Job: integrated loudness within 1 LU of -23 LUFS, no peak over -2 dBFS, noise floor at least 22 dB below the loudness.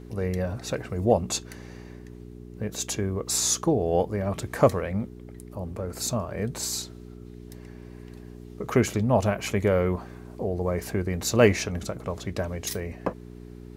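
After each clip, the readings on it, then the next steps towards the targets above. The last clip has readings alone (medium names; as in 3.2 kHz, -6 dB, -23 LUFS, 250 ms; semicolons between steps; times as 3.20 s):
hum 60 Hz; highest harmonic 420 Hz; hum level -41 dBFS; loudness -26.5 LUFS; peak level -4.5 dBFS; loudness target -23.0 LUFS
-> de-hum 60 Hz, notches 7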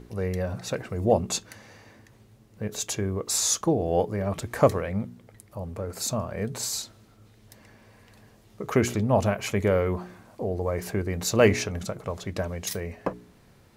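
hum not found; loudness -27.0 LUFS; peak level -5.0 dBFS; loudness target -23.0 LUFS
-> trim +4 dB; peak limiter -2 dBFS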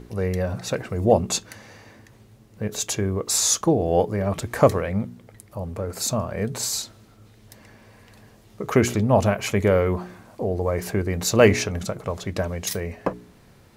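loudness -23.0 LUFS; peak level -2.0 dBFS; noise floor -52 dBFS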